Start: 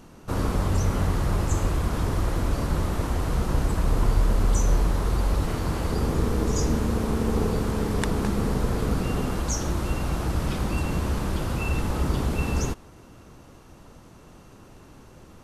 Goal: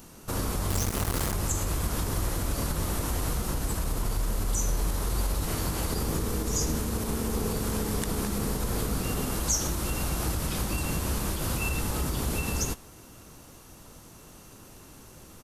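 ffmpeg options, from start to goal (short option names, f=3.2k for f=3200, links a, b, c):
-filter_complex "[0:a]alimiter=limit=-18.5dB:level=0:latency=1:release=90,aemphasis=mode=production:type=75kf,asplit=2[a][b];[b]adelay=19,volume=-14dB[c];[a][c]amix=inputs=2:normalize=0,asettb=1/sr,asplit=3[d][e][f];[d]atrim=end=0.704[g];[e]atrim=start=0.7:end=1.34,asetpts=PTS-STARTPTS,afade=t=in:d=0.004:c=qsin,afade=t=out:st=0.636:d=0.004:c=qsin,acrusher=bits=3:mix=0:aa=0.5[h];[f]atrim=start=1.336[i];[g][h]acrossfade=d=0.004:c1=hsin:c2=qsin[j];[j][i]acrossfade=d=0.004:c1=qsin:c2=hsin,volume=-2.5dB"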